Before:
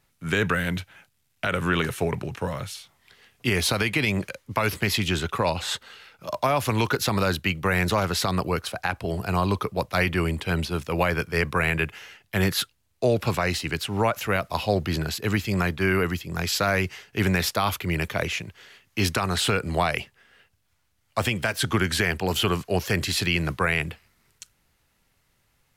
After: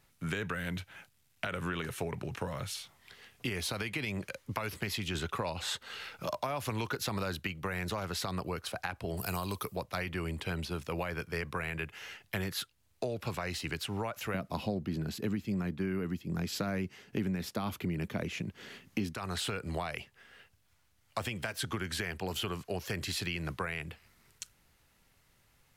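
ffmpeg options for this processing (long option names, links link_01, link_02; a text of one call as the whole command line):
ffmpeg -i in.wav -filter_complex "[0:a]asettb=1/sr,asplit=3[link_01][link_02][link_03];[link_01]atrim=end=9.174[link_04];[link_02]atrim=start=9.17:end=9.76,asetpts=PTS-STARTPTS,afade=type=in:duration=0.004:curve=qsin,afade=type=out:start_time=0.586:duration=0.004:curve=qsin,aemphasis=mode=production:type=75fm[link_05];[link_03]atrim=start=9.756[link_06];[link_04][link_05]acrossfade=duration=0.004:curve1=hsin:curve2=qsin[link_07];[link_07][link_06]acrossfade=duration=0.004:curve1=qsin:curve2=hsin,asettb=1/sr,asplit=3[link_08][link_09][link_10];[link_08]atrim=end=14.344[link_11];[link_09]atrim=start=14.34:end=19.14,asetpts=PTS-STARTPTS,afade=type=in:duration=0.004:curve=qsin,afade=type=out:start_time=4.796:duration=0.004:curve=qsin,equalizer=frequency=220:width=0.76:gain=15[link_12];[link_10]atrim=start=19.136[link_13];[link_11][link_12]acrossfade=duration=0.004:curve1=hsin:curve2=qsin[link_14];[link_14][link_13]acrossfade=duration=0.004:curve1=qsin:curve2=hsin,asplit=3[link_15][link_16][link_17];[link_15]atrim=end=5.152[link_18];[link_16]atrim=start=5.148:end=7.472,asetpts=PTS-STARTPTS,volume=4.5dB[link_19];[link_17]atrim=start=7.468[link_20];[link_18][link_19]acrossfade=duration=0.004:curve1=hsin:curve2=hsin[link_21];[link_21][link_20]acrossfade=duration=0.004:curve1=hsin:curve2=hsin,acompressor=threshold=-34dB:ratio=5" out.wav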